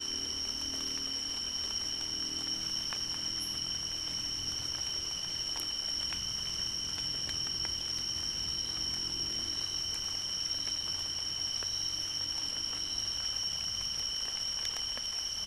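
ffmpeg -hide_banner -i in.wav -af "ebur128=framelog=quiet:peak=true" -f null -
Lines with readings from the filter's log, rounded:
Integrated loudness:
  I:         -32.5 LUFS
  Threshold: -42.5 LUFS
Loudness range:
  LRA:         0.7 LU
  Threshold: -52.5 LUFS
  LRA low:   -32.9 LUFS
  LRA high:  -32.2 LUFS
True peak:
  Peak:      -18.0 dBFS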